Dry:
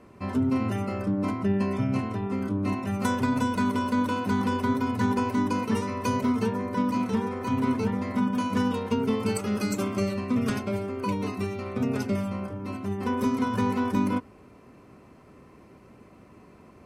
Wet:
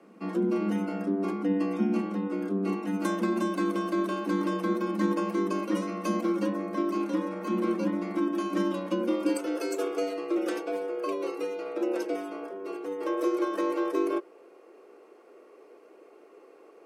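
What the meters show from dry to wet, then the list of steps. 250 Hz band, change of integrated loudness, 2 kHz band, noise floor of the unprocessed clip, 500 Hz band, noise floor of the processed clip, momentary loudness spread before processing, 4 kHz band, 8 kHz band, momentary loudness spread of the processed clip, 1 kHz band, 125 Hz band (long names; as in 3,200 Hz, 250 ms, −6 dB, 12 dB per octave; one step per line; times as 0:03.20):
−2.5 dB, −2.0 dB, −4.0 dB, −52 dBFS, +2.0 dB, −54 dBFS, 5 LU, −4.0 dB, −4.5 dB, 5 LU, −4.5 dB, can't be measured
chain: high-pass filter sweep 110 Hz → 310 Hz, 0:08.97–0:09.58
frequency shifter +94 Hz
level −4.5 dB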